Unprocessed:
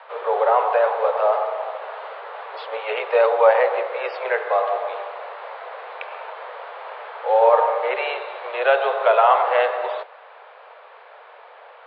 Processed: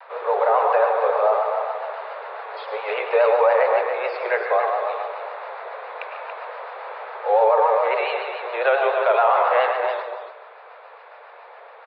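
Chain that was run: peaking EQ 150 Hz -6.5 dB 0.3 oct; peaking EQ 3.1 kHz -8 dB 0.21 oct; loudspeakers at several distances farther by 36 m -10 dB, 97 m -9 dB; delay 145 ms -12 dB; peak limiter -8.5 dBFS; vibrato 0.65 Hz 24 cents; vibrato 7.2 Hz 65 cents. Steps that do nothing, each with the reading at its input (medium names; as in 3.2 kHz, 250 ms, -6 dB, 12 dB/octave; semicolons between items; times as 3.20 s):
peaking EQ 150 Hz: input has nothing below 360 Hz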